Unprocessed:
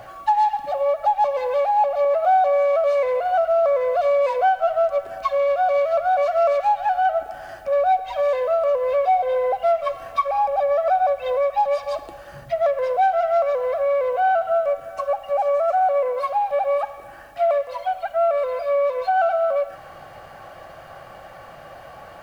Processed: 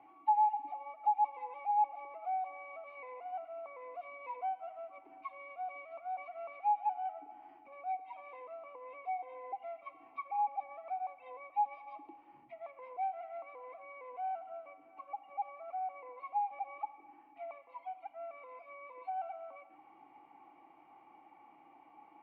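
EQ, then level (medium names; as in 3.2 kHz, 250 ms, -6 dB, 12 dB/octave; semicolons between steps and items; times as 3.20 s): vowel filter u; three-band isolator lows -15 dB, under 250 Hz, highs -18 dB, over 3 kHz; bass shelf 190 Hz +6 dB; -3.5 dB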